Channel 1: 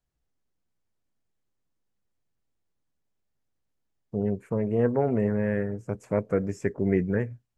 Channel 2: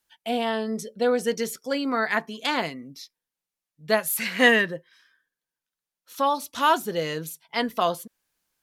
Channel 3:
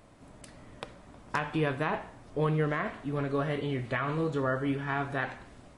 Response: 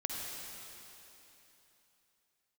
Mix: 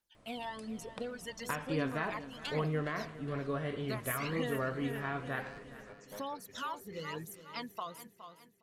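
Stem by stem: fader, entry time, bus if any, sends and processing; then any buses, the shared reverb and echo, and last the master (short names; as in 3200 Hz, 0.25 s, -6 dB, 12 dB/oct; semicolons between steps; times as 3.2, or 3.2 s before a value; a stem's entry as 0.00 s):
-13.0 dB, 0.00 s, bus A, no send, echo send -12 dB, elliptic band-pass 110–5800 Hz; tilt +4.5 dB/oct; overloaded stage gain 30 dB
-12.0 dB, 0.00 s, bus A, no send, echo send -17.5 dB, phaser 1.1 Hz, delay 1.2 ms, feedback 57%
-6.0 dB, 0.15 s, no bus, no send, echo send -16.5 dB, notch 860 Hz, Q 14
bus A: 0.0 dB, reverb removal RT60 2 s; compressor 6:1, threshold -37 dBFS, peak gain reduction 13 dB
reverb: off
echo: feedback echo 0.414 s, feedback 46%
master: dry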